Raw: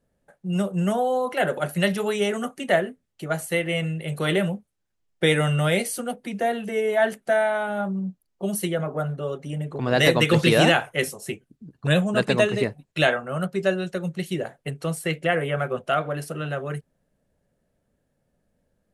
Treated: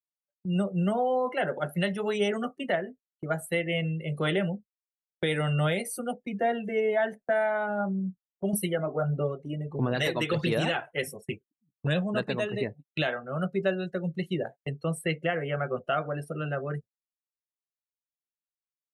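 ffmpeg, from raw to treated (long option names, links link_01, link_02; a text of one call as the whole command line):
ffmpeg -i in.wav -filter_complex "[0:a]asettb=1/sr,asplit=3[link_01][link_02][link_03];[link_01]atrim=end=8.534[link_04];[link_02]atrim=start=8.53:end=11.74,asetpts=PTS-STARTPTS,afade=type=in:duration=0.004:curve=qsin,afade=type=out:start_time=3.206:duration=0.004:curve=qsin,aphaser=in_gain=1:out_gain=1:delay=3.1:decay=0.44:speed=1.5:type=sinusoidal[link_05];[link_03]atrim=start=11.736[link_06];[link_04][link_05]acrossfade=duration=0.004:curve1=hsin:curve2=qsin[link_07];[link_07][link_06]acrossfade=duration=0.004:curve1=qsin:curve2=hsin,afftdn=noise_reduction=22:noise_floor=-36,agate=range=-26dB:threshold=-39dB:ratio=16:detection=peak,alimiter=limit=-14.5dB:level=0:latency=1:release=365,volume=-2.5dB" out.wav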